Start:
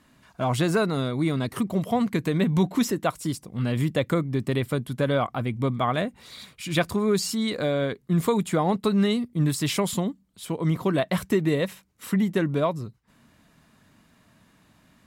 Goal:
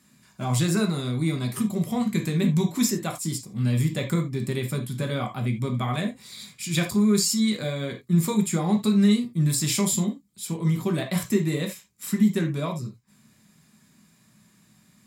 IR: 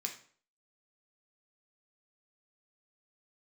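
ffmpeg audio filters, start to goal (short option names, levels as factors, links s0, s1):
-filter_complex "[0:a]bass=f=250:g=8,treble=f=4000:g=10[s0];[1:a]atrim=start_sample=2205,atrim=end_sample=3969[s1];[s0][s1]afir=irnorm=-1:irlink=0,volume=0.668"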